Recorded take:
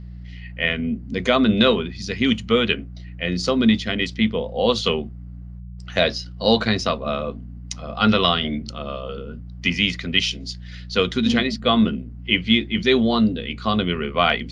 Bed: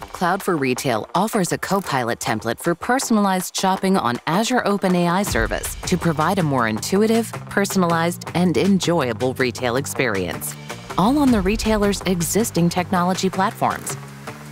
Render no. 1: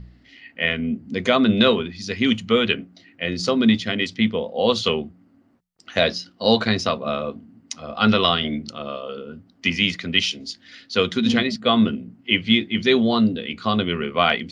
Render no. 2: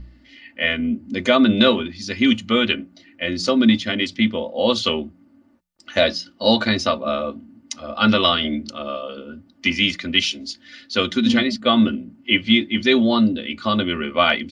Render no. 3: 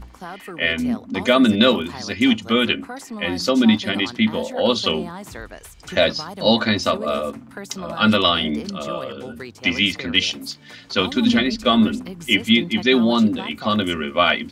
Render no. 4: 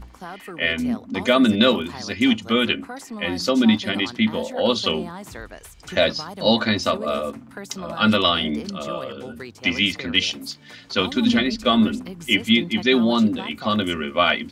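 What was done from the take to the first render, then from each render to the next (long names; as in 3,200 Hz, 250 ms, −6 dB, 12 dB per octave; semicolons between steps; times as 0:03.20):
hum removal 60 Hz, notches 3
comb filter 3.4 ms, depth 67%
mix in bed −15.5 dB
level −1.5 dB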